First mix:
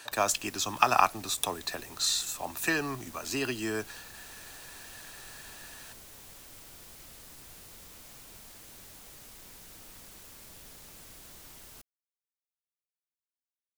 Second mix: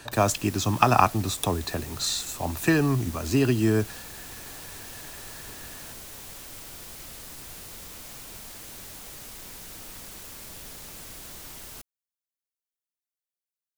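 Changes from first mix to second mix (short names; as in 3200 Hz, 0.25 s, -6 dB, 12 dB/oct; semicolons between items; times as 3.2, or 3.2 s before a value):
speech: remove HPF 1100 Hz 6 dB/oct; background +8.0 dB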